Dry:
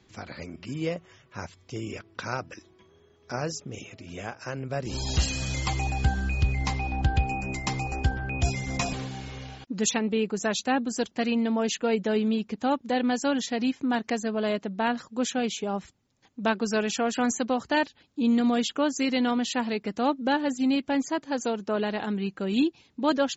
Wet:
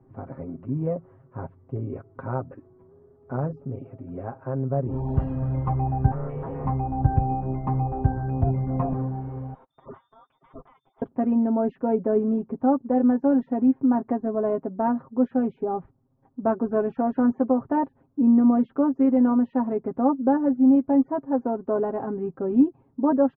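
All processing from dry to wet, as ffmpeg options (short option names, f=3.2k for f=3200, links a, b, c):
-filter_complex "[0:a]asettb=1/sr,asplit=3[a][b][c];[a]atrim=end=6.114[d];[b]atrim=start=6.11:end=6.66,asetpts=PTS-STARTPTS,afade=t=in:d=0.004:c=qsin,afade=t=out:st=0.546:d=0.004:c=qsin,afreqshift=80,aeval=exprs='0.0316*(abs(mod(val(0)/0.0316+3,4)-2)-1)':c=same[e];[c]atrim=start=6.656[f];[d][e]acrossfade=d=0.004:c1=hsin:c2=qsin[g];[g][f]acrossfade=d=0.004:c1=qsin:c2=hsin,asettb=1/sr,asplit=3[h][i][j];[h]atrim=end=9.544[k];[i]atrim=start=9.54:end=11.02,asetpts=PTS-STARTPTS,afade=t=in:d=0.004:c=qsin,afade=t=out:st=1.476:d=0.004:c=qsin,lowpass=f=3.2k:t=q:w=0.5098,lowpass=f=3.2k:t=q:w=0.6013,lowpass=f=3.2k:t=q:w=0.9,lowpass=f=3.2k:t=q:w=2.563,afreqshift=-3800,tiltshelf=f=870:g=4,acompressor=threshold=-37dB:ratio=16:attack=3.2:release=140:knee=1:detection=peak[l];[j]atrim=start=11.016[m];[k][l]acrossfade=d=0.004:c1=hsin:c2=qsin[n];[n][m]acrossfade=d=0.004:c1=qsin:c2=hsin,lowpass=f=1.1k:w=0.5412,lowpass=f=1.1k:w=1.3066,lowshelf=f=450:g=4.5,aecho=1:1:7.5:0.67"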